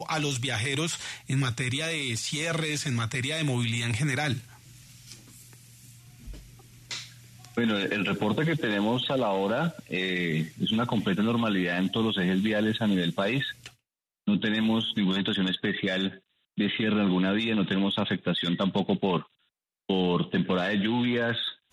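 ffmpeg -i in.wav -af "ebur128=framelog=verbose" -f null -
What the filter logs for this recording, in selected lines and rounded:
Integrated loudness:
  I:         -27.3 LUFS
  Threshold: -38.0 LUFS
Loudness range:
  LRA:         5.7 LU
  Threshold: -48.1 LUFS
  LRA low:   -32.4 LUFS
  LRA high:  -26.8 LUFS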